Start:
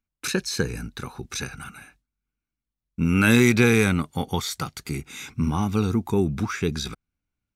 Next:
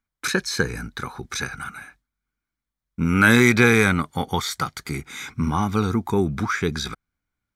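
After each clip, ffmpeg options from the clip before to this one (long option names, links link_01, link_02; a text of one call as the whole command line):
ffmpeg -i in.wav -af "equalizer=frequency=1500:width=0.61:gain=7.5,bandreject=frequency=2700:width=5.7" out.wav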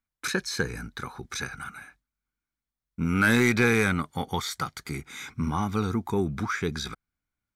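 ffmpeg -i in.wav -af "asoftclip=type=tanh:threshold=-5dB,volume=-5dB" out.wav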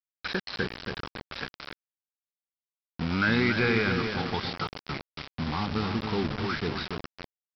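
ffmpeg -i in.wav -filter_complex "[0:a]asplit=2[link_01][link_02];[link_02]adelay=279,lowpass=frequency=1800:poles=1,volume=-5.5dB,asplit=2[link_03][link_04];[link_04]adelay=279,lowpass=frequency=1800:poles=1,volume=0.54,asplit=2[link_05][link_06];[link_06]adelay=279,lowpass=frequency=1800:poles=1,volume=0.54,asplit=2[link_07][link_08];[link_08]adelay=279,lowpass=frequency=1800:poles=1,volume=0.54,asplit=2[link_09][link_10];[link_10]adelay=279,lowpass=frequency=1800:poles=1,volume=0.54,asplit=2[link_11][link_12];[link_12]adelay=279,lowpass=frequency=1800:poles=1,volume=0.54,asplit=2[link_13][link_14];[link_14]adelay=279,lowpass=frequency=1800:poles=1,volume=0.54[link_15];[link_01][link_03][link_05][link_07][link_09][link_11][link_13][link_15]amix=inputs=8:normalize=0,aresample=11025,acrusher=bits=4:mix=0:aa=0.000001,aresample=44100,volume=-3.5dB" out.wav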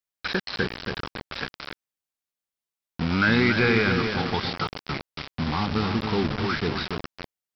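ffmpeg -i in.wav -af "acontrast=29,volume=-1dB" out.wav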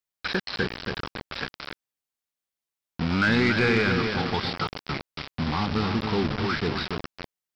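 ffmpeg -i in.wav -af "asoftclip=type=tanh:threshold=-12dB" out.wav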